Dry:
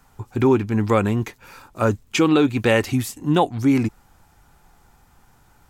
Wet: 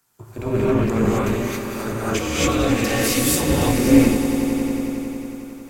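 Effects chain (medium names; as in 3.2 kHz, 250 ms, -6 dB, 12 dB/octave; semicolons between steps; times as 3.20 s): high-pass 88 Hz 24 dB/octave; treble shelf 4.9 kHz +9.5 dB; band-stop 800 Hz, Q 12; in parallel at -0.5 dB: level held to a coarse grid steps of 12 dB; on the sum: peak limiter -14.5 dBFS, peak gain reduction 14 dB; AM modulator 240 Hz, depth 80%; on a send: echo with a slow build-up 91 ms, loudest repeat 5, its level -13 dB; on the sum: gated-style reverb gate 300 ms rising, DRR -7.5 dB; three bands expanded up and down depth 40%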